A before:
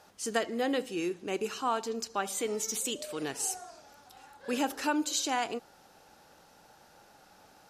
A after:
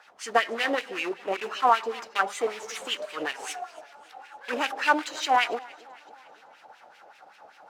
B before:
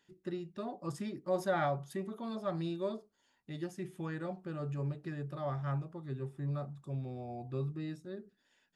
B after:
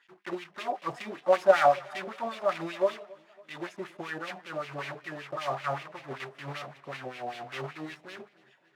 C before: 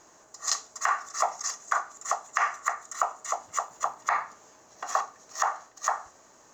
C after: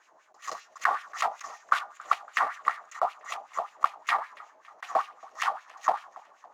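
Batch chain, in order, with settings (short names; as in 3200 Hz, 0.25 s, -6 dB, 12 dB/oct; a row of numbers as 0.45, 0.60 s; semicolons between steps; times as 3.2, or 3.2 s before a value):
block floating point 3-bit; de-hum 203.2 Hz, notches 30; in parallel at -9 dB: bit-crush 4-bit; on the sum: LFO band-pass sine 5.2 Hz 620–2600 Hz; warbling echo 0.279 s, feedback 54%, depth 68 cents, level -23 dB; normalise peaks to -6 dBFS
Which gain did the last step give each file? +13.0, +15.0, +3.5 dB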